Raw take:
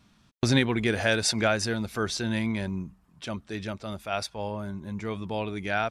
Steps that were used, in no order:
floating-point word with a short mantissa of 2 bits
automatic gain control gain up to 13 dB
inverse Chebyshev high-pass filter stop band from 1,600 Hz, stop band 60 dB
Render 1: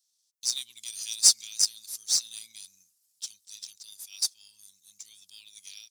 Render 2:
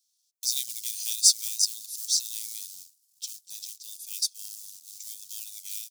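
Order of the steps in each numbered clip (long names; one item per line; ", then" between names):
inverse Chebyshev high-pass filter, then automatic gain control, then floating-point word with a short mantissa
floating-point word with a short mantissa, then inverse Chebyshev high-pass filter, then automatic gain control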